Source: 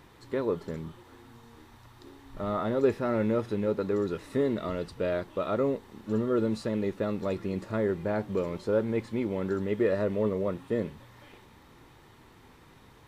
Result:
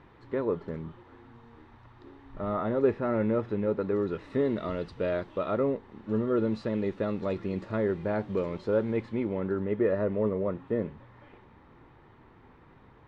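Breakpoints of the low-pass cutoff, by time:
3.77 s 2.3 kHz
4.63 s 4 kHz
5.30 s 4 kHz
5.81 s 2.2 kHz
6.85 s 4 kHz
8.88 s 4 kHz
9.52 s 1.9 kHz

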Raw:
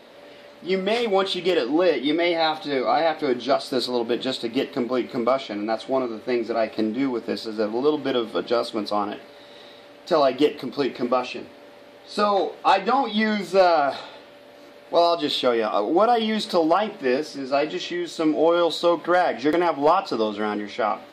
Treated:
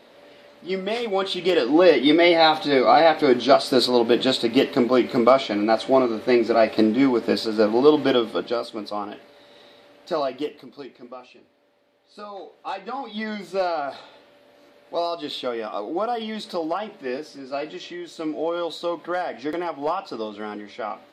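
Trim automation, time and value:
1.11 s -3.5 dB
1.92 s +5.5 dB
8.05 s +5.5 dB
8.66 s -5 dB
10.15 s -5 dB
11.02 s -17.5 dB
12.23 s -17.5 dB
13.32 s -7 dB

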